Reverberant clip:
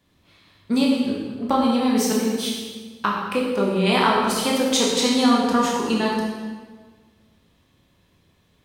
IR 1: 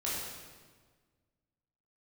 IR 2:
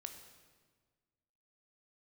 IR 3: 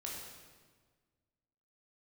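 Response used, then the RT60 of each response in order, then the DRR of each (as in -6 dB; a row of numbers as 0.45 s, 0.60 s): 3; 1.5 s, 1.5 s, 1.5 s; -7.5 dB, 5.5 dB, -3.5 dB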